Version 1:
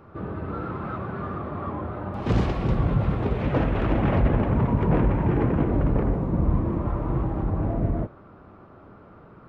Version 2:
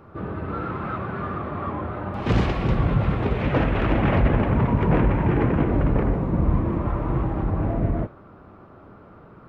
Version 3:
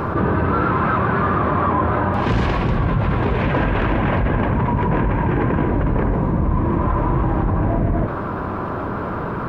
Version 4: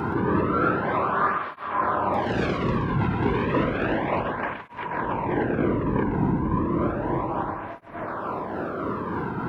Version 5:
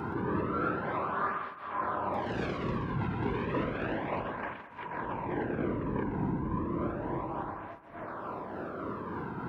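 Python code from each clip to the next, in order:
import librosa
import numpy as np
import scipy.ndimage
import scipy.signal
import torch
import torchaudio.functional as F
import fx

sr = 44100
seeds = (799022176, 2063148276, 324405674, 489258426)

y1 = fx.dynamic_eq(x, sr, hz=2300.0, q=0.79, threshold_db=-45.0, ratio=4.0, max_db=5)
y1 = y1 * 10.0 ** (1.5 / 20.0)
y2 = fx.rider(y1, sr, range_db=10, speed_s=0.5)
y2 = fx.small_body(y2, sr, hz=(1000.0, 1600.0), ring_ms=25, db=8)
y2 = fx.env_flatten(y2, sr, amount_pct=70)
y3 = fx.tremolo_shape(y2, sr, shape='triangle', hz=3.4, depth_pct=45)
y3 = y3 + 10.0 ** (-7.5 / 20.0) * np.pad(y3, (int(123 * sr / 1000.0), 0))[:len(y3)]
y3 = fx.flanger_cancel(y3, sr, hz=0.32, depth_ms=1.8)
y4 = y3 + 10.0 ** (-14.5 / 20.0) * np.pad(y3, (int(208 * sr / 1000.0), 0))[:len(y3)]
y4 = y4 * 10.0 ** (-9.0 / 20.0)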